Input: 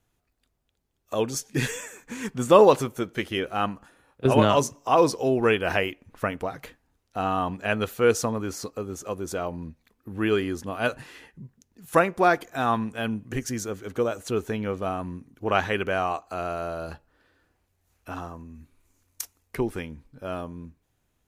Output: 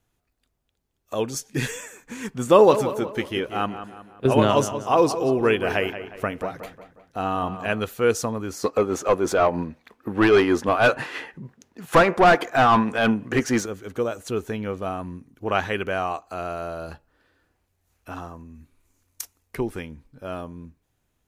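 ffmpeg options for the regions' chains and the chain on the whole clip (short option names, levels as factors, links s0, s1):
-filter_complex "[0:a]asettb=1/sr,asplit=3[s0][s1][s2];[s0]atrim=end=2.464[s3];[s1]atrim=start=2.46:end=7.8,asetpts=PTS-STARTPTS,afade=t=in:d=0.004:c=qsin,afade=t=out:st=5.336:d=0.004:c=qsin,equalizer=f=370:w=1.5:g=2,asplit=2[s4][s5];[s5]adelay=181,lowpass=f=3400:p=1,volume=0.282,asplit=2[s6][s7];[s7]adelay=181,lowpass=f=3400:p=1,volume=0.46,asplit=2[s8][s9];[s9]adelay=181,lowpass=f=3400:p=1,volume=0.46,asplit=2[s10][s11];[s11]adelay=181,lowpass=f=3400:p=1,volume=0.46,asplit=2[s12][s13];[s13]adelay=181,lowpass=f=3400:p=1,volume=0.46[s14];[s4][s6][s8][s10][s12][s14]amix=inputs=6:normalize=0,atrim=end_sample=235494[s15];[s2]atrim=start=7.796[s16];[s3][s15]acrossfade=d=0.004:c1=hsin:c2=qsin[s17];[s17][s16]acrossfade=d=0.004:c1=qsin:c2=hsin,asettb=1/sr,asplit=3[s18][s19][s20];[s18]atrim=end=8.644[s21];[s19]atrim=start=8.64:end=13.66,asetpts=PTS-STARTPTS,afade=t=in:d=0.004:c=qsin,afade=t=out:st=5.016:d=0.004:c=qsin,tremolo=f=6.3:d=0.47,asplit=2[s22][s23];[s23]highpass=f=720:p=1,volume=22.4,asoftclip=type=tanh:threshold=0.562[s24];[s22][s24]amix=inputs=2:normalize=0,lowpass=f=1400:p=1,volume=0.501[s25];[s20]atrim=start=13.656[s26];[s21][s25]acrossfade=d=0.004:c1=hsin:c2=qsin[s27];[s27][s26]acrossfade=d=0.004:c1=qsin:c2=hsin"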